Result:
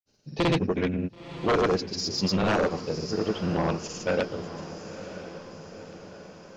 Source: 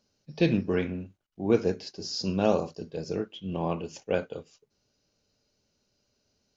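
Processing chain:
granular cloud 100 ms, grains 20 per second, pitch spread up and down by 0 semitones
sine wavefolder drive 7 dB, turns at −14.5 dBFS
feedback delay with all-pass diffusion 990 ms, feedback 56%, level −12 dB
level −4 dB

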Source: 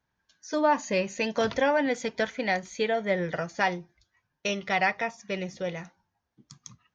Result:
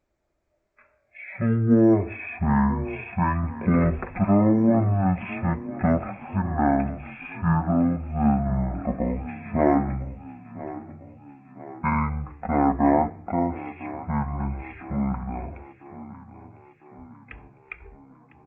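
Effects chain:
echo with shifted repeats 377 ms, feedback 54%, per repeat +58 Hz, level −16 dB
change of speed 0.376×
level +4.5 dB

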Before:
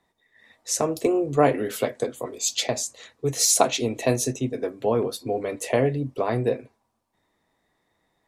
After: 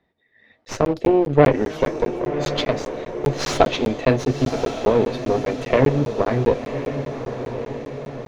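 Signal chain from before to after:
parametric band 1,000 Hz −9.5 dB 0.63 octaves
harmonic generator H 6 −18 dB, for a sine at −6 dBFS
in parallel at −10 dB: centre clipping without the shift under −25.5 dBFS
on the sum: high-frequency loss of the air 270 metres
feedback delay with all-pass diffusion 1,081 ms, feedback 56%, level −9 dB
regular buffer underruns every 0.20 s, samples 512, zero
level +4.5 dB

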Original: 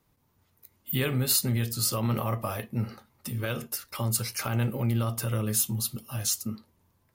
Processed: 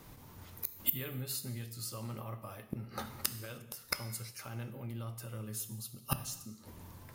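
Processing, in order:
gate with flip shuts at −29 dBFS, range −31 dB
reverb whose tail is shaped and stops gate 340 ms falling, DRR 9.5 dB
level +16 dB

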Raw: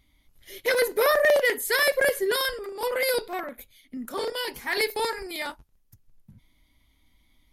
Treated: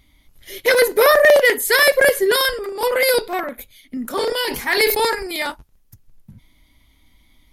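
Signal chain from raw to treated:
0:04.03–0:05.15: level that may fall only so fast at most 61 dB per second
level +8.5 dB

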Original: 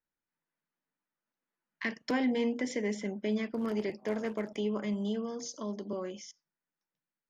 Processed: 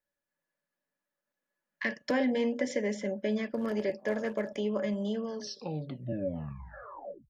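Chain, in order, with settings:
turntable brake at the end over 2.07 s
hollow resonant body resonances 570/1,700 Hz, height 17 dB, ringing for 95 ms

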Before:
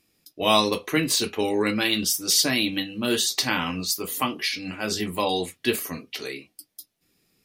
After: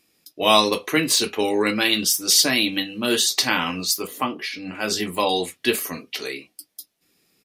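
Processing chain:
low-shelf EQ 140 Hz −11.5 dB
downsampling to 32,000 Hz
0:04.07–0:04.75: high-shelf EQ 2,400 Hz −12 dB
level +4 dB

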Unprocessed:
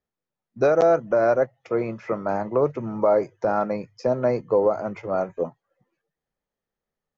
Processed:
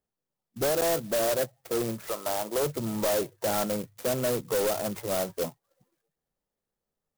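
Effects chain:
0:02.07–0:02.62: high-pass filter 640 Hz → 280 Hz 12 dB per octave
soft clipping −23 dBFS, distortion −8 dB
converter with an unsteady clock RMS 0.11 ms

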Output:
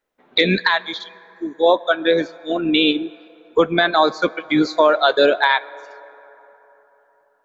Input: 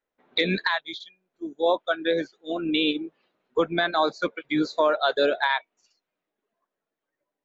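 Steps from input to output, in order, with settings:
on a send: high-pass filter 310 Hz 6 dB per octave + convolution reverb RT60 3.9 s, pre-delay 7 ms, DRR 18.5 dB
on the sum: level +7.5 dB

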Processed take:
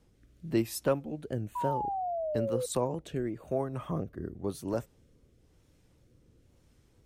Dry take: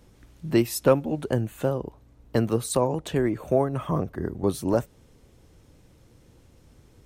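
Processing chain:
tape wow and flutter 66 cents
rotating-speaker cabinet horn 1 Hz
sound drawn into the spectrogram fall, 0:01.55–0:02.66, 490–1,000 Hz −26 dBFS
level −7 dB

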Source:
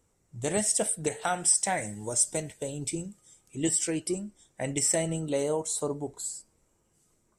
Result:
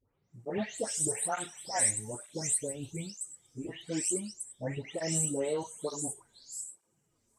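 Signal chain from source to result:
every frequency bin delayed by itself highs late, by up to 337 ms
through-zero flanger with one copy inverted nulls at 1.1 Hz, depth 6.7 ms
level −1 dB

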